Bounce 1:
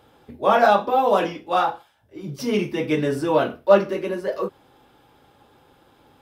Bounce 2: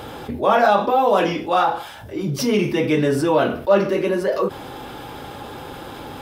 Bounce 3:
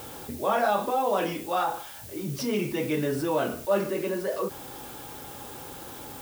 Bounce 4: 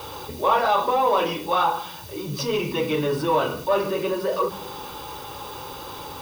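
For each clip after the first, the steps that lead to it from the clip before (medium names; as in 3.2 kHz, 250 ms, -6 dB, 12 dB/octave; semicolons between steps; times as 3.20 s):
level flattener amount 50%; trim -2 dB
added noise blue -36 dBFS; trim -9 dB
in parallel at -4 dB: hard clipper -27 dBFS, distortion -8 dB; on the sum: reverberation RT60 1.2 s, pre-delay 3 ms, DRR 19 dB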